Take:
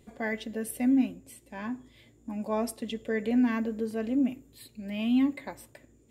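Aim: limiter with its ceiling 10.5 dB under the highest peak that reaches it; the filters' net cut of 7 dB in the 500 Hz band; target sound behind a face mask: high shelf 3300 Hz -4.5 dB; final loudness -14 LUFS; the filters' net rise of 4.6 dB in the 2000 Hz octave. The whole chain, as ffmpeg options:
-af "equalizer=f=500:t=o:g=-9,equalizer=f=2k:t=o:g=7,alimiter=level_in=3.5dB:limit=-24dB:level=0:latency=1,volume=-3.5dB,highshelf=f=3.3k:g=-4.5,volume=23dB"

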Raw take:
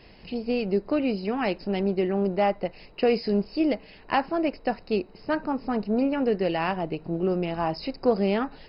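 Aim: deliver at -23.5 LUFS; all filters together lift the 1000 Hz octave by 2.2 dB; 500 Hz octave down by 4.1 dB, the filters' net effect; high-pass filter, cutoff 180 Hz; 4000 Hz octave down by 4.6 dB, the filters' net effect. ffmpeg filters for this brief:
-af "highpass=180,equalizer=f=500:t=o:g=-6.5,equalizer=f=1k:t=o:g=6,equalizer=f=4k:t=o:g=-7.5,volume=5.5dB"

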